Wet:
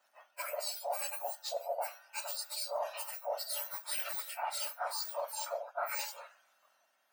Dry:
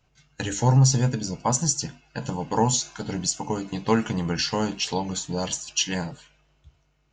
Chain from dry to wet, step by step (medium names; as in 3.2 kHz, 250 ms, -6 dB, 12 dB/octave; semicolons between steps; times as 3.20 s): spectrum inverted on a logarithmic axis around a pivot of 2 kHz; high-pass 630 Hz 12 dB/octave; reverse; compression 6:1, threshold -38 dBFS, peak gain reduction 18 dB; reverse; trim +3 dB